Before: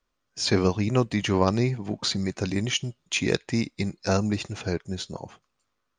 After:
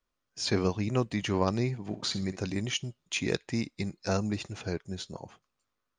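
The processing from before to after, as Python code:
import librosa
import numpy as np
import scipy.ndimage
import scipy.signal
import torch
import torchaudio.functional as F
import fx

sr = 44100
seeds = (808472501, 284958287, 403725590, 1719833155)

y = fx.room_flutter(x, sr, wall_m=10.8, rt60_s=0.3, at=(1.9, 2.35), fade=0.02)
y = y * 10.0 ** (-5.5 / 20.0)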